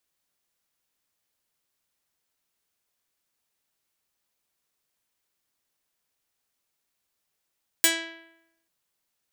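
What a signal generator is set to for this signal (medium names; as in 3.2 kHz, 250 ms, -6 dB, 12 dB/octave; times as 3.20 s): plucked string E4, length 0.84 s, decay 0.87 s, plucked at 0.26, medium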